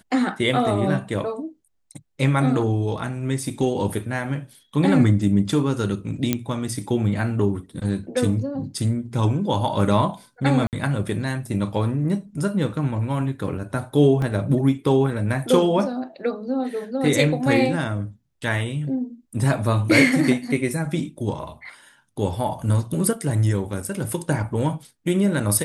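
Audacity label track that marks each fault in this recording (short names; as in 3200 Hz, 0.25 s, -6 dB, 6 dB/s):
6.330000	6.330000	pop -6 dBFS
10.670000	10.730000	gap 58 ms
14.220000	14.220000	gap 2.6 ms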